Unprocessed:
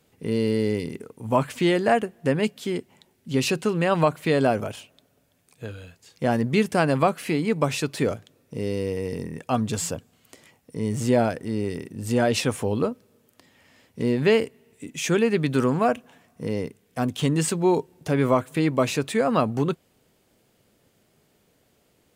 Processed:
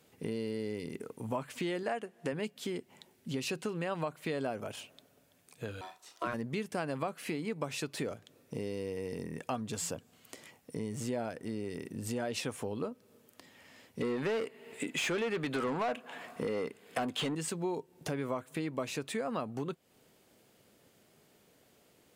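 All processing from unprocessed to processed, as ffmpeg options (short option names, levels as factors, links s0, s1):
-filter_complex "[0:a]asettb=1/sr,asplit=3[s0][s1][s2];[s0]atrim=end=1.834[s3];[s1]atrim=start=1.83:end=2.33,asetpts=PTS-STARTPTS,afade=t=in:d=0.004:c=qsin,afade=t=out:st=0.496:d=0.004:c=qsin,lowpass=12000,lowshelf=f=180:g=-9.5[s4];[s2]atrim=start=2.326[s5];[s3][s4]acrossfade=d=0.004:c1=hsin:c2=qsin[s6];[s6][s5]acrossfade=d=0.004:c1=qsin:c2=hsin,asettb=1/sr,asplit=3[s7][s8][s9];[s7]atrim=end=5.814[s10];[s8]atrim=start=5.81:end=6.34,asetpts=PTS-STARTPTS,afade=t=in:d=0.004:c=qsin,afade=t=out:st=0.526:d=0.004:c=qsin,aeval=exprs='val(0)*sin(2*PI*840*n/s)':c=same,asplit=2[s11][s12];[s12]adelay=35,volume=0.282[s13];[s11][s13]amix=inputs=2:normalize=0,atrim=end_sample=23373[s14];[s9]atrim=start=6.336[s15];[s10][s14]acrossfade=d=0.004:c1=hsin:c2=qsin[s16];[s16][s15]acrossfade=d=0.004:c1=qsin:c2=hsin,asettb=1/sr,asplit=3[s17][s18][s19];[s17]atrim=end=14.014[s20];[s18]atrim=start=14.01:end=17.35,asetpts=PTS-STARTPTS,afade=t=in:d=0.004:c=qsin,afade=t=out:st=3.336:d=0.004:c=qsin,bandreject=f=5800:w=6.4,asplit=2[s21][s22];[s22]highpass=f=720:p=1,volume=14.1,asoftclip=type=tanh:threshold=0.376[s23];[s21][s23]amix=inputs=2:normalize=0,lowpass=f=2600:p=1,volume=0.501[s24];[s19]atrim=start=17.346[s25];[s20][s24]acrossfade=d=0.004:c1=hsin:c2=qsin[s26];[s26][s25]acrossfade=d=0.004:c1=qsin:c2=hsin,acompressor=threshold=0.02:ratio=4,lowshelf=f=98:g=-10.5"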